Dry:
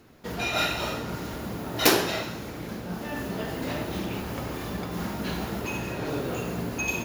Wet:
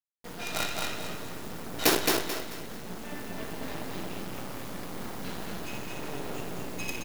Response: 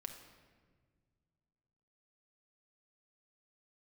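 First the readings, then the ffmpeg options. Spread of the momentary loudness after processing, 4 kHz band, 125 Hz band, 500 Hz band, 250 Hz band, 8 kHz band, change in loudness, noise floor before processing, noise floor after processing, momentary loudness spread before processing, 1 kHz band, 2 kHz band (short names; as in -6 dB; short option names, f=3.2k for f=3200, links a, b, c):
14 LU, -3.0 dB, -8.5 dB, -5.0 dB, -6.0 dB, -1.0 dB, -4.0 dB, -37 dBFS, -41 dBFS, 11 LU, -4.5 dB, -5.0 dB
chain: -filter_complex "[0:a]highpass=110,acrusher=bits=4:dc=4:mix=0:aa=0.000001,asplit=2[a][b];[b]aecho=0:1:219|438|657|876:0.708|0.241|0.0818|0.0278[c];[a][c]amix=inputs=2:normalize=0,volume=-4dB"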